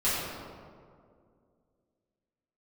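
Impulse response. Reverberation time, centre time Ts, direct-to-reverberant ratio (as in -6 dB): 2.2 s, 125 ms, -11.5 dB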